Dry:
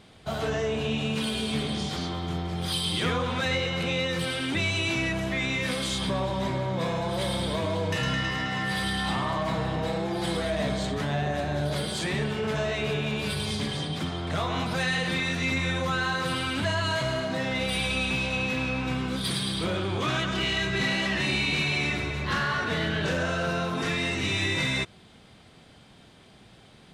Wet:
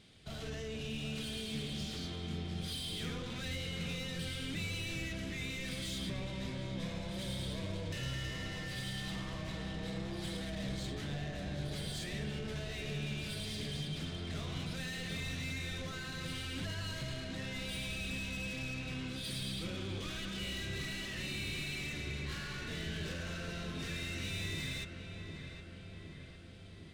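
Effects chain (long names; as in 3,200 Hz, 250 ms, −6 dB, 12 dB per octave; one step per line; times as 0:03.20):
mid-hump overdrive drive 20 dB, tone 6,300 Hz, clips at −16 dBFS
guitar amp tone stack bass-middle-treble 10-0-1
feedback echo with a low-pass in the loop 761 ms, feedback 71%, low-pass 2,200 Hz, level −7 dB
level +4 dB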